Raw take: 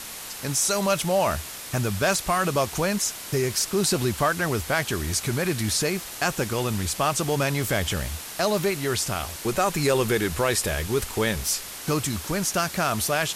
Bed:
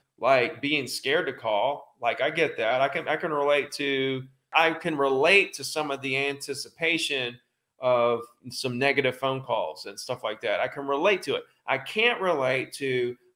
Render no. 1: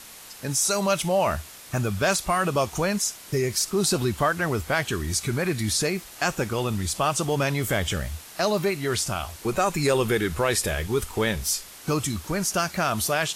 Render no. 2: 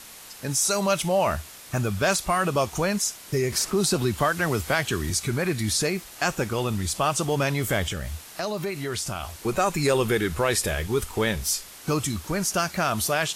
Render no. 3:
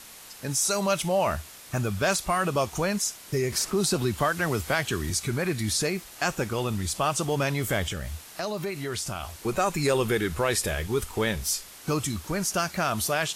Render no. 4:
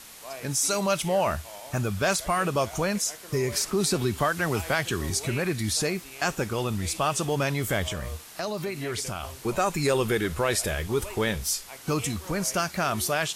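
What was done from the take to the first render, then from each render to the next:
noise print and reduce 7 dB
3.52–5.10 s: three bands compressed up and down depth 40%; 7.88–9.30 s: compression 2.5:1, threshold -27 dBFS
trim -2 dB
add bed -19.5 dB

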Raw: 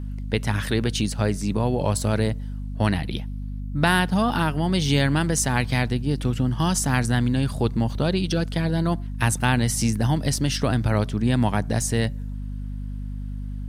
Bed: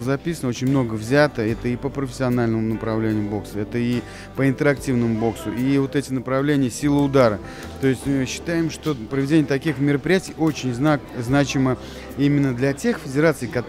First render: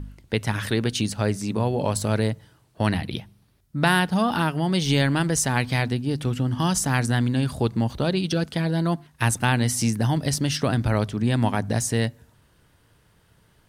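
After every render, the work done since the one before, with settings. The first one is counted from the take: de-hum 50 Hz, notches 5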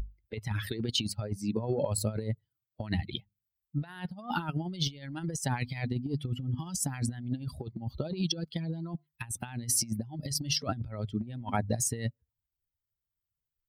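expander on every frequency bin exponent 2; compressor with a negative ratio -32 dBFS, ratio -0.5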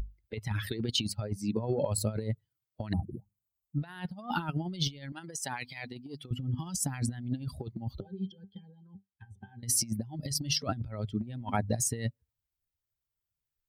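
2.93–3.78 s: brick-wall FIR band-stop 1.3–6.2 kHz; 5.12–6.31 s: high-pass 760 Hz 6 dB/octave; 8.00–9.63 s: pitch-class resonator G, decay 0.14 s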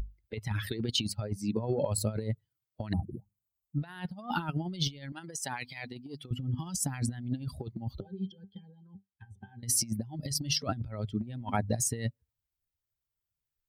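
no audible change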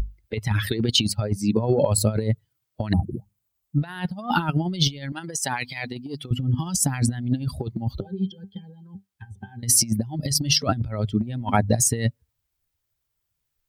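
trim +10 dB

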